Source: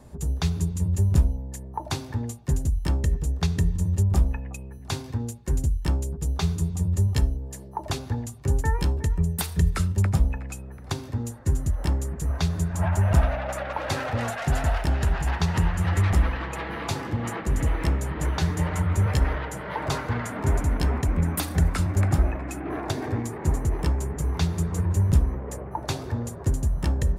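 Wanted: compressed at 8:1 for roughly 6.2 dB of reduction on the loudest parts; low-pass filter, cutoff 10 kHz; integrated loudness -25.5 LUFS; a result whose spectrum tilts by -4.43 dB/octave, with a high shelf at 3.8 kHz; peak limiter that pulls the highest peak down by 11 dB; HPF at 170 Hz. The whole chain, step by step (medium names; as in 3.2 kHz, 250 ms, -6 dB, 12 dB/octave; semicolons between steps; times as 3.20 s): high-pass 170 Hz; low-pass 10 kHz; treble shelf 3.8 kHz +7 dB; compression 8:1, threshold -29 dBFS; trim +10.5 dB; peak limiter -14.5 dBFS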